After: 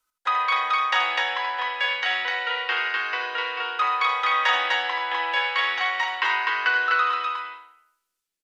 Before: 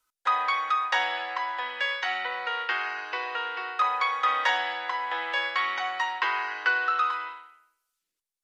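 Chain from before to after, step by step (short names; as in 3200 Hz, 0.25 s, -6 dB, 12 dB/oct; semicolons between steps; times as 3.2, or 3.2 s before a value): dynamic EQ 2800 Hz, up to +6 dB, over -41 dBFS, Q 0.98; on a send: loudspeakers at several distances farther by 27 m -8 dB, 86 m -2 dB; on the sum: gain -1 dB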